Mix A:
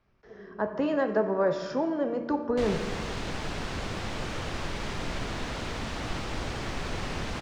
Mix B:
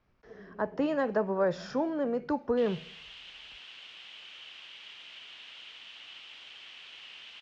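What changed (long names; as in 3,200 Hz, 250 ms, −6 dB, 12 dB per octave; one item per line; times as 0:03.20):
background: add resonant band-pass 3,000 Hz, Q 5.3
reverb: off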